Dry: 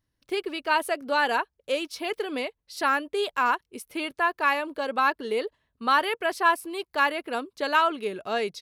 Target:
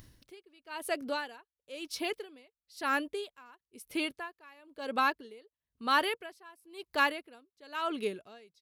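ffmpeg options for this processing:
-af "equalizer=f=1k:w=0.52:g=-6,acompressor=mode=upward:threshold=-38dB:ratio=2.5,aeval=exprs='val(0)*pow(10,-28*(0.5-0.5*cos(2*PI*1*n/s))/20)':c=same,volume=1dB"

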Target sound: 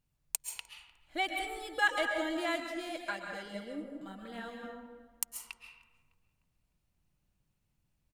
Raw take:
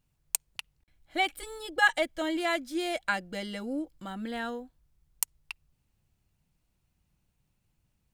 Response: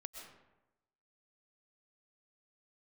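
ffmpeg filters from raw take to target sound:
-filter_complex "[0:a]asplit=2[a][b];[b]adelay=303,lowpass=f=2.5k:p=1,volume=-20dB,asplit=2[c][d];[d]adelay=303,lowpass=f=2.5k:p=1,volume=0.48,asplit=2[e][f];[f]adelay=303,lowpass=f=2.5k:p=1,volume=0.48,asplit=2[g][h];[h]adelay=303,lowpass=f=2.5k:p=1,volume=0.48[i];[a][c][e][g][i]amix=inputs=5:normalize=0[j];[1:a]atrim=start_sample=2205,asetrate=41013,aresample=44100[k];[j][k]afir=irnorm=-1:irlink=0,asettb=1/sr,asplit=3[l][m][n];[l]atrim=end=2.604[o];[m]atrim=start=2.6:end=4.63,asetpts=PTS-STARTPTS,afade=t=in:d=0.004:c=qsin,afade=t=out:st=2.026:d=0.004:c=qsin,flanger=delay=1.6:depth=6.4:regen=37:speed=1.8:shape=triangular[p];[n]atrim=start=4.626[q];[o][p]acrossfade=d=0.004:c1=hsin:c2=qsin[r];[r][q]acrossfade=d=0.004:c1=qsin:c2=hsin"

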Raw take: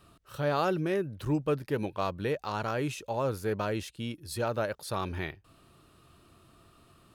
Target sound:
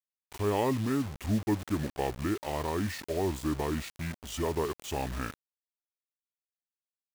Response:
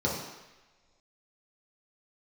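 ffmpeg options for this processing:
-af "asetrate=31183,aresample=44100,atempo=1.41421,acrusher=bits=6:mix=0:aa=0.000001"

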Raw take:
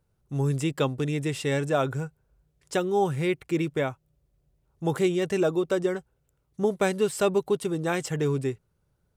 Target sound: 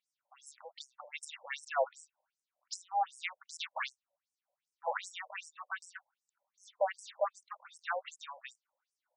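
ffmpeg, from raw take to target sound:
-filter_complex "[0:a]asoftclip=type=tanh:threshold=-17.5dB,asettb=1/sr,asplit=3[a][b][c];[a]atrim=end=3.464[d];[b]atrim=start=3.46:end=5,asetpts=PTS-STARTPTS,afade=t=in:d=0.004:c=qsin,afade=t=out:st=1.536:d=0.004:c=qsin,aeval=exprs='0.126*(cos(1*acos(clip(val(0)/0.126,-1,1)))-cos(1*PI/2))+0.0178*(cos(4*acos(clip(val(0)/0.126,-1,1)))-cos(4*PI/2))+0.0224*(cos(8*acos(clip(val(0)/0.126,-1,1)))-cos(8*PI/2))':c=same[e];[c]atrim=start=4.996[f];[d][e]acrossfade=d=0.004:c1=hsin:c2=qsin[g];[g][f]acrossfade=d=0.004:c1=qsin:c2=hsin,afftfilt=real='re*between(b*sr/1024,700*pow(7300/700,0.5+0.5*sin(2*PI*2.6*pts/sr))/1.41,700*pow(7300/700,0.5+0.5*sin(2*PI*2.6*pts/sr))*1.41)':imag='im*between(b*sr/1024,700*pow(7300/700,0.5+0.5*sin(2*PI*2.6*pts/sr))/1.41,700*pow(7300/700,0.5+0.5*sin(2*PI*2.6*pts/sr))*1.41)':win_size=1024:overlap=0.75,volume=1dB"

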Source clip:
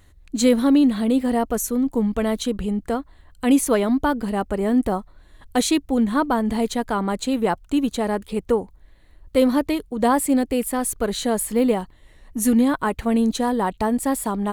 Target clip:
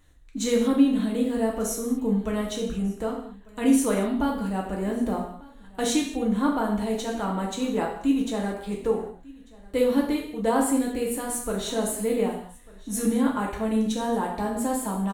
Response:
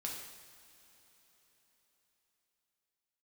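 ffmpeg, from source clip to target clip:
-filter_complex "[0:a]asetrate=42336,aresample=44100,aecho=1:1:1195:0.0708[a];[1:a]atrim=start_sample=2205,afade=t=out:st=0.44:d=0.01,atrim=end_sample=19845,asetrate=70560,aresample=44100[b];[a][b]afir=irnorm=-1:irlink=0"

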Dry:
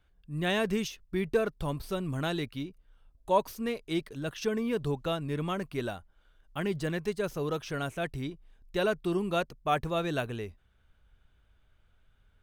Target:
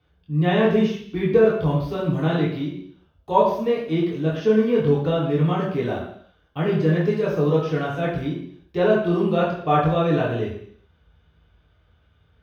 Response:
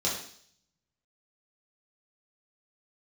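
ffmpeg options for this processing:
-filter_complex "[0:a]acrossover=split=2800[a][b];[b]acompressor=threshold=-49dB:ratio=4:attack=1:release=60[c];[a][c]amix=inputs=2:normalize=0,equalizer=f=8.6k:w=0.68:g=-13[d];[1:a]atrim=start_sample=2205,afade=t=out:st=0.41:d=0.01,atrim=end_sample=18522,asetrate=39249,aresample=44100[e];[d][e]afir=irnorm=-1:irlink=0"

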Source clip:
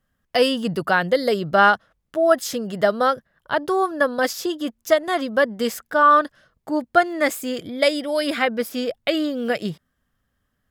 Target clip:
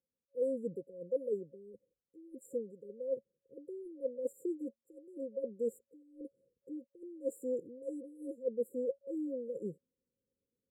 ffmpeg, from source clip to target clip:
-filter_complex "[0:a]dynaudnorm=f=100:g=3:m=6dB,asplit=3[a][b][c];[a]bandpass=f=730:t=q:w=8,volume=0dB[d];[b]bandpass=f=1.09k:t=q:w=8,volume=-6dB[e];[c]bandpass=f=2.44k:t=q:w=8,volume=-9dB[f];[d][e][f]amix=inputs=3:normalize=0,areverse,acompressor=threshold=-33dB:ratio=6,areverse,afftfilt=real='re*(1-between(b*sr/4096,550,7100))':imag='im*(1-between(b*sr/4096,550,7100))':win_size=4096:overlap=0.75,volume=4dB"

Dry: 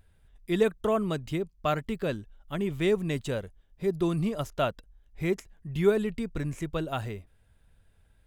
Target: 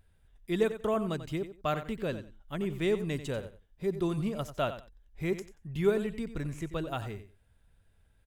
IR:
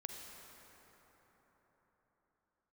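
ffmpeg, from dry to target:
-af "aecho=1:1:91|182:0.251|0.0477,volume=-3.5dB"

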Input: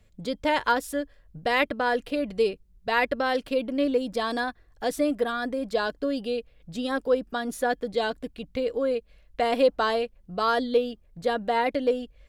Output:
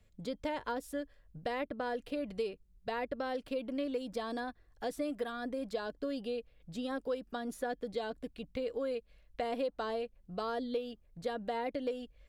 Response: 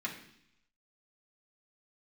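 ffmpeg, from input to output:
-filter_complex "[0:a]acrossover=split=730|1800[a][b][c];[a]acompressor=threshold=-28dB:ratio=4[d];[b]acompressor=threshold=-39dB:ratio=4[e];[c]acompressor=threshold=-43dB:ratio=4[f];[d][e][f]amix=inputs=3:normalize=0,volume=-6.5dB"

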